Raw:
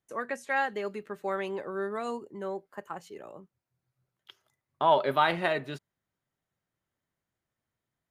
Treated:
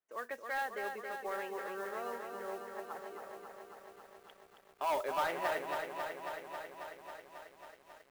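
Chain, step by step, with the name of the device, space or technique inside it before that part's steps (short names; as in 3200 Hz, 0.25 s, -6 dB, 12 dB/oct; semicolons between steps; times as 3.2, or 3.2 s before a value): carbon microphone (BPF 410–2700 Hz; soft clip -22 dBFS, distortion -11 dB; modulation noise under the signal 20 dB); lo-fi delay 0.272 s, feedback 80%, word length 10-bit, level -5.5 dB; gain -6 dB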